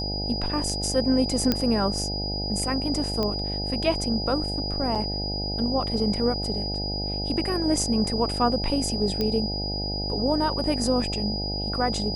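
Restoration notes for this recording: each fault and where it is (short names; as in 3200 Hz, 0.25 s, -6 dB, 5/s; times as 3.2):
buzz 50 Hz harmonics 17 -31 dBFS
tone 4900 Hz -30 dBFS
1.52 pop -8 dBFS
3.23 pop -14 dBFS
4.95–4.96 gap 5.9 ms
9.21 pop -13 dBFS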